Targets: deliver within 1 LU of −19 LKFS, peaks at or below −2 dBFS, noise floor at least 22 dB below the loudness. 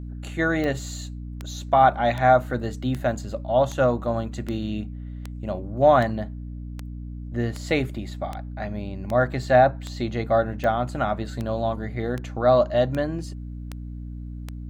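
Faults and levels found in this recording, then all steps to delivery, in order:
number of clicks 19; mains hum 60 Hz; hum harmonics up to 300 Hz; level of the hum −32 dBFS; integrated loudness −23.5 LKFS; sample peak −5.0 dBFS; target loudness −19.0 LKFS
→ click removal
hum removal 60 Hz, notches 5
level +4.5 dB
brickwall limiter −2 dBFS

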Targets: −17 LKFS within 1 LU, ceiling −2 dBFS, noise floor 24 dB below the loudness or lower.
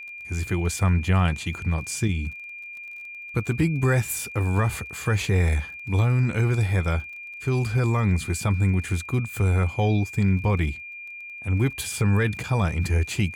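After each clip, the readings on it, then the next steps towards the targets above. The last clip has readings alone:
crackle rate 26 per second; interfering tone 2,400 Hz; level of the tone −36 dBFS; integrated loudness −24.5 LKFS; sample peak −11.0 dBFS; target loudness −17.0 LKFS
→ click removal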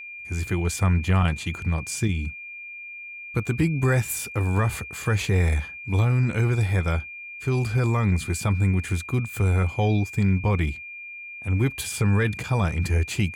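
crackle rate 0.67 per second; interfering tone 2,400 Hz; level of the tone −36 dBFS
→ notch filter 2,400 Hz, Q 30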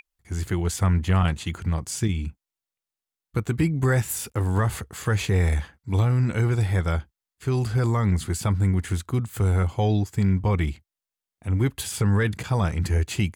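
interfering tone none found; integrated loudness −24.5 LKFS; sample peak −11.5 dBFS; target loudness −17.0 LKFS
→ level +7.5 dB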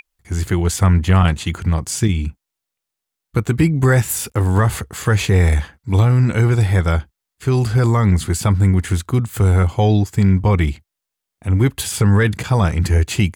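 integrated loudness −17.0 LKFS; sample peak −4.0 dBFS; background noise floor −82 dBFS

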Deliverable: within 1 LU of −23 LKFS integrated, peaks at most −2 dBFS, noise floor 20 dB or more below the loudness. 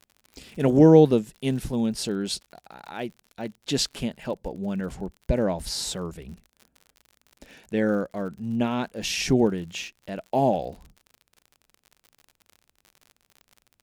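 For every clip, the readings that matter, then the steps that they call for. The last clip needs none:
crackle rate 56 per second; integrated loudness −24.5 LKFS; sample peak −4.5 dBFS; target loudness −23.0 LKFS
→ click removal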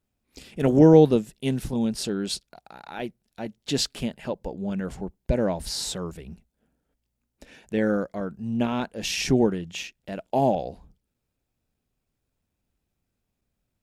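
crackle rate 0.072 per second; integrated loudness −24.5 LKFS; sample peak −4.5 dBFS; target loudness −23.0 LKFS
→ level +1.5 dB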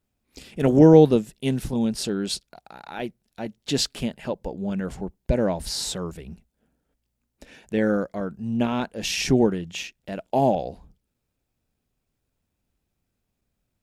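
integrated loudness −23.0 LKFS; sample peak −3.0 dBFS; background noise floor −79 dBFS

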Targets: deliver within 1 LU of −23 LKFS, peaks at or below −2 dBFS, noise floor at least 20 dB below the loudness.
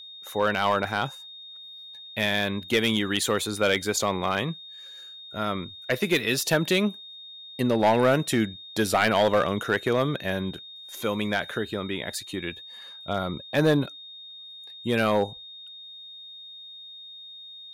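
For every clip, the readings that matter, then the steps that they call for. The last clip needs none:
share of clipped samples 0.5%; peaks flattened at −14.0 dBFS; interfering tone 3,700 Hz; level of the tone −41 dBFS; integrated loudness −25.5 LKFS; sample peak −14.0 dBFS; target loudness −23.0 LKFS
→ clipped peaks rebuilt −14 dBFS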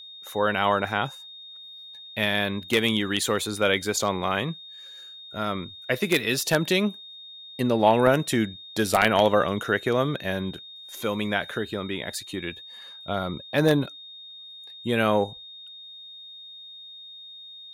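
share of clipped samples 0.0%; interfering tone 3,700 Hz; level of the tone −41 dBFS
→ notch filter 3,700 Hz, Q 30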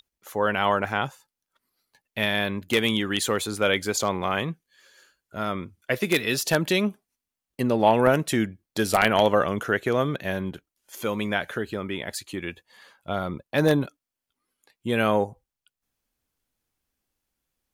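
interfering tone none found; integrated loudness −25.0 LKFS; sample peak −5.0 dBFS; target loudness −23.0 LKFS
→ level +2 dB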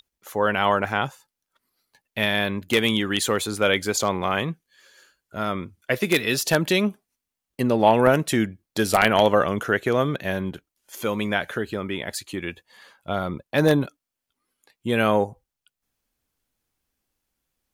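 integrated loudness −23.0 LKFS; sample peak −3.0 dBFS; background noise floor −86 dBFS

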